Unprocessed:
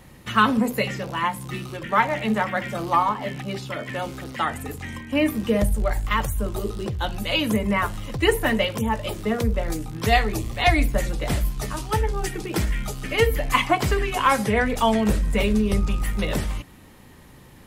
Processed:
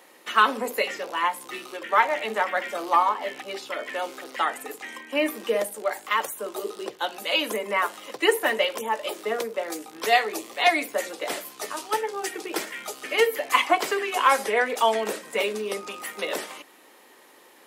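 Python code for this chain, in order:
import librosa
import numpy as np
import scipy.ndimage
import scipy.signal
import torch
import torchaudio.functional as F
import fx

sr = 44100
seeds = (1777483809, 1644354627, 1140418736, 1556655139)

y = scipy.signal.sosfilt(scipy.signal.butter(4, 360.0, 'highpass', fs=sr, output='sos'), x)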